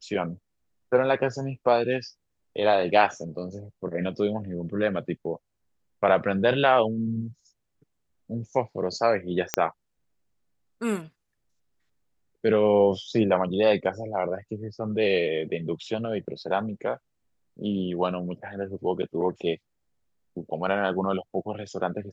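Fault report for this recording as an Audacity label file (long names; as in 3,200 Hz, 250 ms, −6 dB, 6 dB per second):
9.540000	9.540000	click −5 dBFS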